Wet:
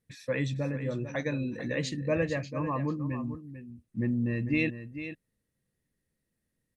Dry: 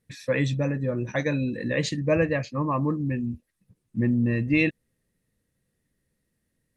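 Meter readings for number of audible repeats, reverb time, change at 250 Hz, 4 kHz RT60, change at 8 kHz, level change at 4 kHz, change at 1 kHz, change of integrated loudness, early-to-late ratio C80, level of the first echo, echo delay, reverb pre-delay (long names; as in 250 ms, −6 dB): 1, no reverb audible, −5.5 dB, no reverb audible, −5.5 dB, −5.5 dB, −5.5 dB, −6.0 dB, no reverb audible, −11.0 dB, 445 ms, no reverb audible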